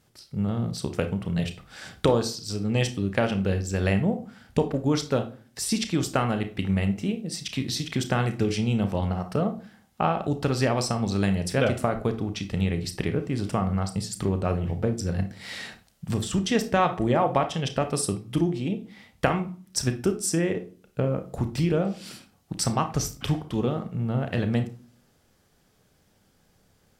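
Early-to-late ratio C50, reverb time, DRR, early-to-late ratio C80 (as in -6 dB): 11.5 dB, 0.40 s, 7.5 dB, 19.0 dB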